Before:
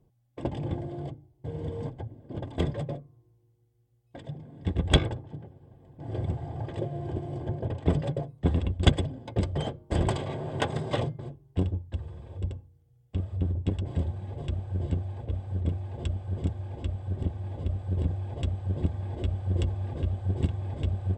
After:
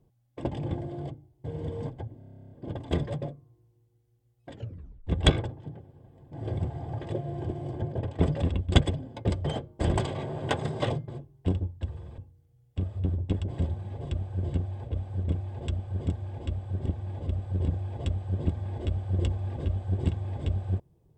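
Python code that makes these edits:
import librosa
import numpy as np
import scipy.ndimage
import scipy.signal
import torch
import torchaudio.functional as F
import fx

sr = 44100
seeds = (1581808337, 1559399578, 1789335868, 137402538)

y = fx.edit(x, sr, fx.stutter(start_s=2.18, slice_s=0.03, count=12),
    fx.tape_stop(start_s=4.21, length_s=0.53),
    fx.cut(start_s=8.09, length_s=0.44),
    fx.cut(start_s=12.29, length_s=0.26), tone=tone)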